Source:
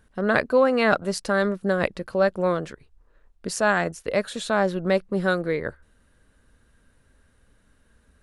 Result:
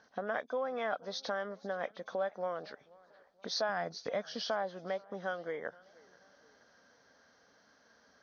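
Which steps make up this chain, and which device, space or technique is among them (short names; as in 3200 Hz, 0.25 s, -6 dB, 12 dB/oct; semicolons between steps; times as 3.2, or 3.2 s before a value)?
hearing aid with frequency lowering (nonlinear frequency compression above 2200 Hz 1.5:1; compressor 4:1, threshold -37 dBFS, peak gain reduction 19 dB; speaker cabinet 340–6200 Hz, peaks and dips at 360 Hz -8 dB, 730 Hz +7 dB, 2600 Hz -9 dB, 4400 Hz +7 dB); 3.69–4.44 tone controls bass +10 dB, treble +3 dB; warbling echo 0.478 s, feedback 47%, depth 146 cents, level -24 dB; gain +2 dB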